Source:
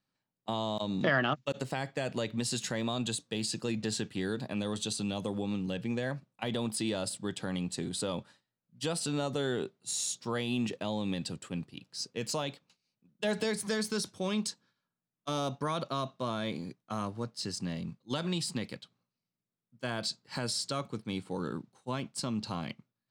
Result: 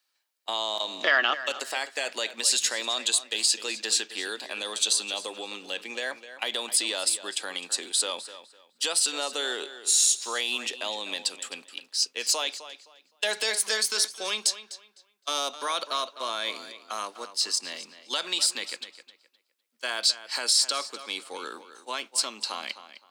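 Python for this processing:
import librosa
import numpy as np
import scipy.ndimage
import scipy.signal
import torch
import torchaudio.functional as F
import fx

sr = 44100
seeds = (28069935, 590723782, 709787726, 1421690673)

p1 = scipy.signal.sosfilt(scipy.signal.bessel(6, 500.0, 'highpass', norm='mag', fs=sr, output='sos'), x)
p2 = fx.tilt_shelf(p1, sr, db=-6.5, hz=1400.0)
p3 = p2 + fx.echo_tape(p2, sr, ms=256, feedback_pct=26, wet_db=-12, lp_hz=5100.0, drive_db=21.0, wow_cents=39, dry=0)
y = F.gain(torch.from_numpy(p3), 7.0).numpy()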